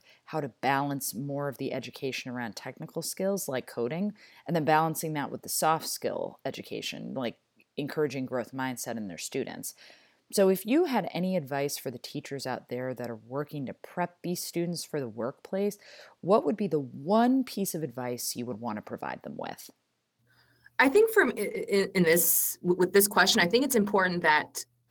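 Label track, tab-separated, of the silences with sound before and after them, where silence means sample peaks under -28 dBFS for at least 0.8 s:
19.520000	20.790000	silence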